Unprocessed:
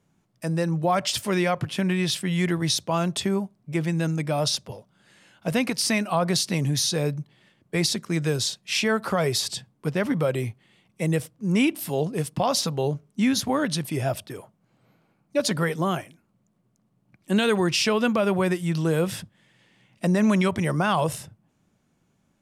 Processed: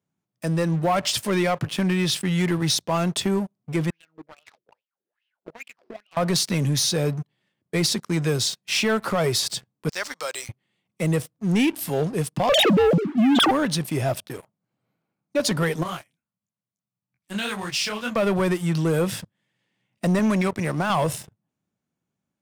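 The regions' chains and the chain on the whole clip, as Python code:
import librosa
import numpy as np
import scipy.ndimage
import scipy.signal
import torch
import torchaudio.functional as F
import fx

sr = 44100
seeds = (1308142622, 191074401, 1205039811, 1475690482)

y = fx.chain(x, sr, fx.cvsd(bps=32000),
    fx.wah_lfo(hz=2.4, low_hz=350.0, high_hz=3100.0, q=8.2), at=(3.9, 6.17))
y = fx.chain(y, sr, fx.highpass(hz=1000.0, slope=12),
    fx.band_shelf(hz=5700.0, db=13.5, octaves=1.2), at=(9.89, 10.49))
y = fx.chain(y, sr, fx.sine_speech(),
    fx.env_flatten(amount_pct=100), at=(12.49, 13.51))
y = fx.chain(y, sr, fx.highpass(hz=60.0, slope=12),
    fx.peak_eq(hz=350.0, db=-12.0, octaves=1.9),
    fx.detune_double(cents=57), at=(15.83, 18.16))
y = fx.chain(y, sr, fx.notch(hz=3100.0, q=5.1),
    fx.power_curve(exponent=1.4),
    fx.highpass(hz=62.0, slope=24), at=(20.19, 20.9))
y = scipy.signal.sosfilt(scipy.signal.butter(2, 78.0, 'highpass', fs=sr, output='sos'), y)
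y = fx.leveller(y, sr, passes=3)
y = y * 10.0 ** (-8.5 / 20.0)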